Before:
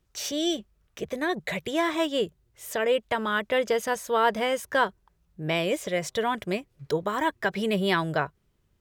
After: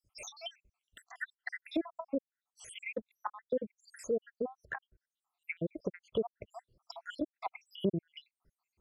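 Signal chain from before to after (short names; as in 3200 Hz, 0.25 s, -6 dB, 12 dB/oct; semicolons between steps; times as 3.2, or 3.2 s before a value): random spectral dropouts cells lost 83%; treble ducked by the level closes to 420 Hz, closed at -30 dBFS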